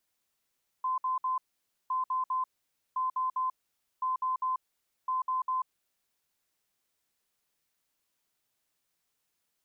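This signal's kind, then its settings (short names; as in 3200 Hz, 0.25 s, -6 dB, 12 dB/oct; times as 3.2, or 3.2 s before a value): beep pattern sine 1030 Hz, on 0.14 s, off 0.06 s, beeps 3, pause 0.52 s, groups 5, -27 dBFS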